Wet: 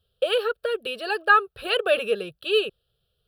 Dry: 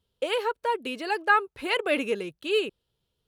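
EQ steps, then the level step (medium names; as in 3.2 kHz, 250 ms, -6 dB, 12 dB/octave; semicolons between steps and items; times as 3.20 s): static phaser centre 1.4 kHz, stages 8; +6.0 dB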